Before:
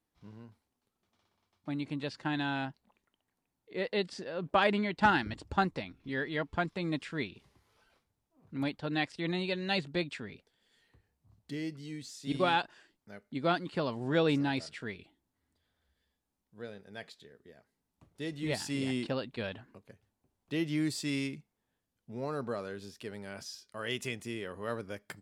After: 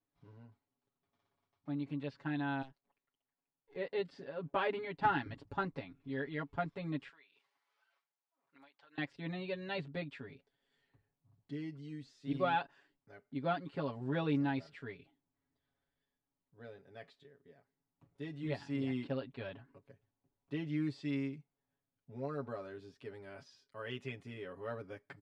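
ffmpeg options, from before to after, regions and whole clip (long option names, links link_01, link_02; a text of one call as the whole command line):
ffmpeg -i in.wav -filter_complex "[0:a]asettb=1/sr,asplit=3[link_01][link_02][link_03];[link_01]atrim=end=2.624[link_04];[link_02]atrim=start=2.62:end=3.76,asetpts=PTS-STARTPTS,afade=type=in:duration=0.004:curve=qsin,afade=type=out:start_time=1.136:duration=0.004:curve=qsin,aeval=exprs='if(lt(val(0),0),0.251*val(0),val(0))':channel_layout=same,lowshelf=frequency=270:gain=-9,acrossover=split=130|3000[link_05][link_06][link_07];[link_06]acompressor=threshold=-47dB:ratio=3:attack=3.2:release=140:knee=2.83:detection=peak[link_08];[link_05][link_08][link_07]amix=inputs=3:normalize=0[link_09];[link_03]atrim=start=3.756[link_10];[link_04][link_09]acrossfade=duration=0.004:curve1=hsin:curve2=qsin[link_11];[link_11][link_10]acrossfade=duration=0.004:curve1=qsin:curve2=hsin,asettb=1/sr,asplit=3[link_12][link_13][link_14];[link_12]atrim=end=7.094[link_15];[link_13]atrim=start=7.09:end=8.98,asetpts=PTS-STARTPTS,afade=type=in:duration=0.004:curve=qsin,afade=type=out:start_time=1.886:duration=0.004:curve=qsin,highpass=990,acompressor=threshold=-52dB:ratio=12:attack=3.2:release=140:knee=1:detection=peak[link_16];[link_14]atrim=start=8.976[link_17];[link_15][link_16]acrossfade=duration=0.004:curve1=hsin:curve2=qsin[link_18];[link_18][link_17]acrossfade=duration=0.004:curve1=qsin:curve2=hsin,acrossover=split=4900[link_19][link_20];[link_20]acompressor=threshold=-59dB:ratio=4:attack=1:release=60[link_21];[link_19][link_21]amix=inputs=2:normalize=0,aemphasis=mode=reproduction:type=75kf,aecho=1:1:7.2:0.99,volume=-8dB" out.wav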